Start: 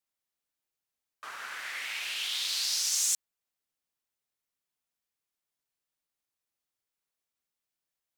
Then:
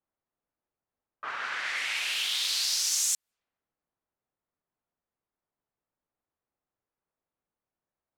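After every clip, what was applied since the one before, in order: level-controlled noise filter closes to 1.1 kHz, open at -31.5 dBFS; compression 2:1, threshold -37 dBFS, peak gain reduction 7.5 dB; trim +7.5 dB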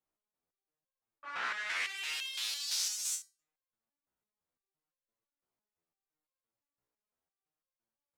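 peak limiter -22 dBFS, peak gain reduction 6 dB; resonator arpeggio 5.9 Hz 61–530 Hz; trim +6 dB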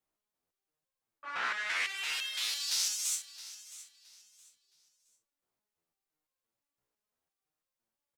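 feedback delay 668 ms, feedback 27%, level -16 dB; trim +2.5 dB

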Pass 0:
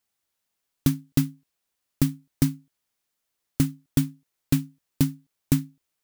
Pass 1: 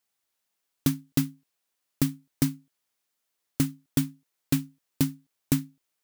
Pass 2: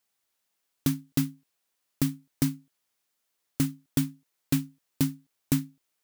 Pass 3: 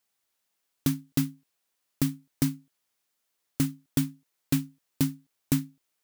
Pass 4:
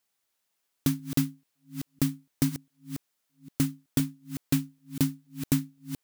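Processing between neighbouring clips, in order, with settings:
bass shelf 140 Hz -9.5 dB
peak limiter -13 dBFS, peak gain reduction 4 dB; trim +1.5 dB
no audible change
chunks repeated in reverse 498 ms, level -11 dB

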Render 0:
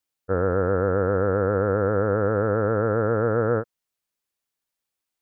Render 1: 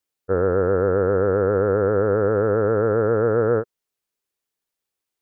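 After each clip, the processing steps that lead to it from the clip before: peaking EQ 410 Hz +6.5 dB 0.49 oct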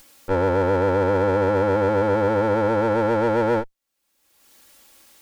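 comb filter that takes the minimum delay 3.6 ms; upward compressor, threshold -26 dBFS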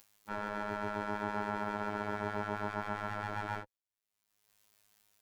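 spectral gate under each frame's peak -10 dB weak; robot voice 104 Hz; trim -8 dB

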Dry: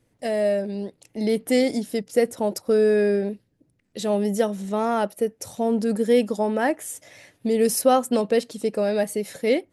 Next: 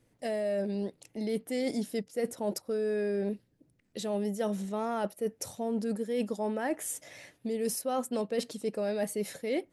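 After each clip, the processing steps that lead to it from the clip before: hum notches 50/100 Hz; reverse; compression 10:1, threshold -26 dBFS, peak gain reduction 14.5 dB; reverse; trim -2 dB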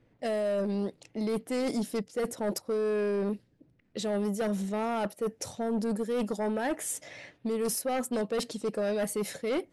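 sine folder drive 7 dB, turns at -18 dBFS; level-controlled noise filter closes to 2.9 kHz, open at -21 dBFS; trim -7 dB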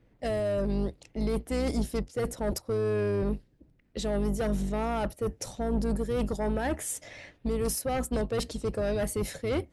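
octave divider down 2 oct, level 0 dB

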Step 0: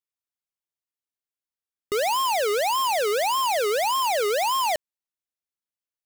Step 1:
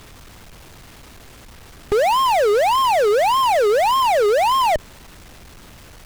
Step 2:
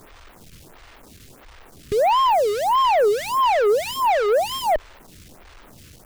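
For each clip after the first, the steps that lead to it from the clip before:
RIAA curve playback; power-law waveshaper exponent 0.35
lamp-driven phase shifter 1.5 Hz

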